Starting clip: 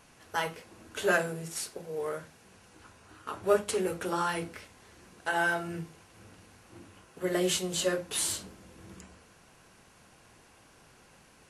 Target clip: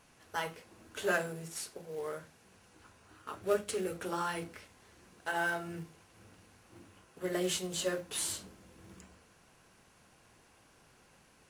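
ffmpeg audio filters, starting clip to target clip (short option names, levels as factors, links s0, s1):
-filter_complex "[0:a]asettb=1/sr,asplit=3[s0][s1][s2];[s0]atrim=end=3.364[s3];[s1]atrim=start=3.36:end=3.96,asetpts=PTS-STARTPTS,afade=t=in:d=0.004:c=qsin,afade=t=out:st=0.596:d=0.004:c=qsin,equalizer=f=930:t=o:w=0.42:g=-9[s4];[s2]atrim=start=3.956[s5];[s3][s4]acrossfade=d=0.004:c1=hsin:c2=qsin[s6];[s6][s5]acrossfade=d=0.004:c1=qsin:c2=hsin,asplit=2[s7][s8];[s8]acrusher=bits=2:mode=log:mix=0:aa=0.000001,volume=0.335[s9];[s7][s9]amix=inputs=2:normalize=0,volume=0.422"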